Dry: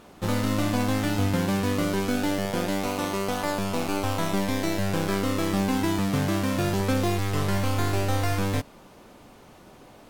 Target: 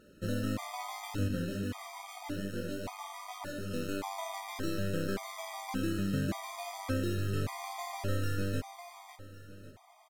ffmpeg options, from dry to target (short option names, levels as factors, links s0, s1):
-filter_complex "[0:a]aecho=1:1:552|1104|1656|2208:0.355|0.124|0.0435|0.0152,asettb=1/sr,asplit=3[s0][s1][s2];[s0]atrim=end=1.284[s3];[s1]atrim=start=1.28:end=3.72,asetpts=PTS-STARTPTS,afade=t=in:d=0.004:c=qsin,afade=t=out:st=2.436:d=0.004:c=qsin,flanger=delay=19.5:depth=3.9:speed=2.4[s4];[s2]atrim=start=3.716[s5];[s3][s4]acrossfade=d=0.004:c1=hsin:c2=qsin[s6];[s6][s5]acrossfade=d=0.004:c1=qsin:c2=hsin,afftfilt=real='re*gt(sin(2*PI*0.87*pts/sr)*(1-2*mod(floor(b*sr/1024/630),2)),0)':imag='im*gt(sin(2*PI*0.87*pts/sr)*(1-2*mod(floor(b*sr/1024/630),2)),0)':win_size=1024:overlap=0.75,volume=0.422"